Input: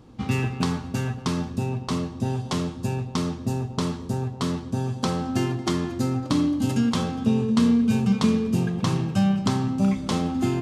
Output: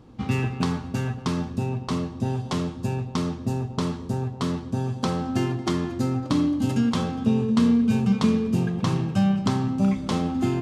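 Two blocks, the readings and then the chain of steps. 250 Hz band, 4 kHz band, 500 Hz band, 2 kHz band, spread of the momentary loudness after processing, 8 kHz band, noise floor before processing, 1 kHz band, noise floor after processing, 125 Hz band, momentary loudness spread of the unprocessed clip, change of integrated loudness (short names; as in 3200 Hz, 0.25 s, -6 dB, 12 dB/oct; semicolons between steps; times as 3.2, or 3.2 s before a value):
0.0 dB, -2.0 dB, 0.0 dB, -1.0 dB, 7 LU, -3.5 dB, -37 dBFS, 0.0 dB, -37 dBFS, 0.0 dB, 7 LU, 0.0 dB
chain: high shelf 4500 Hz -5 dB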